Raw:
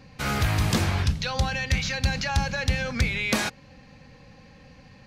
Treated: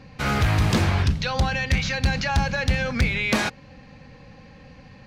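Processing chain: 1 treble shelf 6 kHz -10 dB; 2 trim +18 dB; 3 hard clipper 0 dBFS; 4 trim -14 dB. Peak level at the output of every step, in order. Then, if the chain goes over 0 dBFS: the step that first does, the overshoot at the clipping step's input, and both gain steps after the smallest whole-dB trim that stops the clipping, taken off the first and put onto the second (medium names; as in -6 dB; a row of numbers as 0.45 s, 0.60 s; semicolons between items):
-14.0 dBFS, +4.0 dBFS, 0.0 dBFS, -14.0 dBFS; step 2, 4.0 dB; step 2 +14 dB, step 4 -10 dB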